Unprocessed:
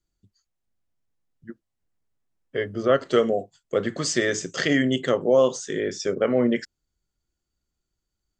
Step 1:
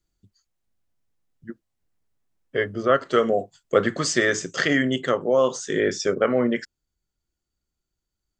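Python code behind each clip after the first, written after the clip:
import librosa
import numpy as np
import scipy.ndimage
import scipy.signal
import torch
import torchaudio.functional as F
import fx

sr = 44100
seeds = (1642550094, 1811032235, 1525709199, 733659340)

y = fx.dynamic_eq(x, sr, hz=1300.0, q=1.2, threshold_db=-38.0, ratio=4.0, max_db=7)
y = fx.rider(y, sr, range_db=10, speed_s=0.5)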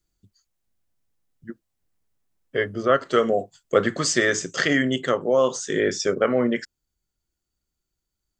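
y = fx.high_shelf(x, sr, hz=7000.0, db=5.0)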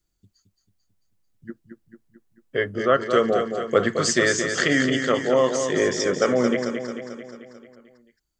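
y = fx.echo_feedback(x, sr, ms=221, feedback_pct=58, wet_db=-7)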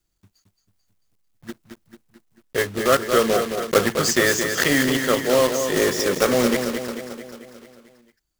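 y = fx.block_float(x, sr, bits=3)
y = y * 10.0 ** (1.0 / 20.0)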